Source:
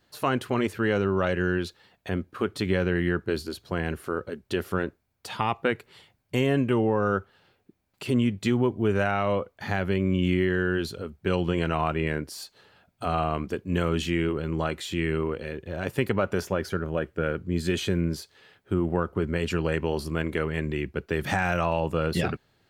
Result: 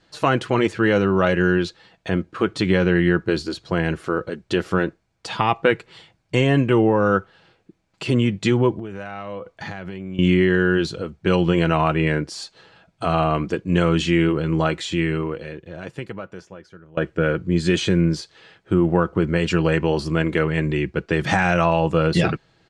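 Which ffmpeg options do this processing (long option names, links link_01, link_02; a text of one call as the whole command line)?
ffmpeg -i in.wav -filter_complex "[0:a]asettb=1/sr,asplit=3[link_01][link_02][link_03];[link_01]atrim=end=8.794[link_04];[link_02]atrim=start=8.79:end=10.19,asetpts=PTS-STARTPTS,afade=type=in:duration=0.004:curve=qsin,afade=type=out:start_time=1.396:duration=0.004:curve=qsin,acompressor=threshold=-35dB:ratio=6:attack=3.2:release=140:knee=1:detection=peak[link_05];[link_03]atrim=start=10.186[link_06];[link_04][link_05]acrossfade=duration=0.004:curve1=hsin:curve2=qsin[link_07];[link_07][link_06]acrossfade=duration=0.004:curve1=qsin:curve2=hsin,asplit=2[link_08][link_09];[link_08]atrim=end=16.97,asetpts=PTS-STARTPTS,afade=type=out:start_time=14.77:duration=2.2:curve=qua:silence=0.0668344[link_10];[link_09]atrim=start=16.97,asetpts=PTS-STARTPTS,afade=type=in:duration=0.004:curve=hsin:silence=0.0668344[link_11];[link_10][link_11]concat=n=2:v=0:a=1,lowpass=frequency=7900:width=0.5412,lowpass=frequency=7900:width=1.3066,aecho=1:1:6.1:0.38,volume=6.5dB" out.wav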